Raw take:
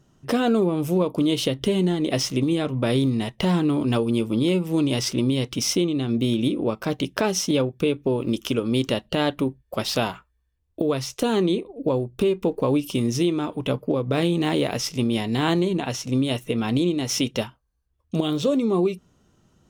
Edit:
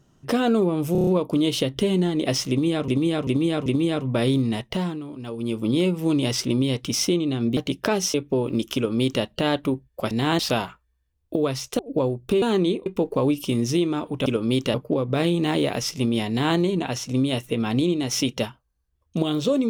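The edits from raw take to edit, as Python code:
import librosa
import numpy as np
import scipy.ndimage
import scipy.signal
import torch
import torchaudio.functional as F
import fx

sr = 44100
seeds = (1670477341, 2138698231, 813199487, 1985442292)

y = fx.edit(x, sr, fx.stutter(start_s=0.92, slice_s=0.03, count=6),
    fx.repeat(start_s=2.34, length_s=0.39, count=4),
    fx.fade_down_up(start_s=3.26, length_s=1.12, db=-13.5, fade_s=0.44),
    fx.cut(start_s=6.25, length_s=0.65),
    fx.cut(start_s=7.47, length_s=0.41),
    fx.duplicate(start_s=8.49, length_s=0.48, to_s=13.72),
    fx.move(start_s=11.25, length_s=0.44, to_s=12.32),
    fx.duplicate(start_s=15.27, length_s=0.28, to_s=9.85), tone=tone)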